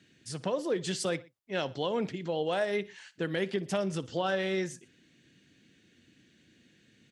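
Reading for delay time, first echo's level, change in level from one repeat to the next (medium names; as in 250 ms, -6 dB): 60 ms, -20.5 dB, -5.0 dB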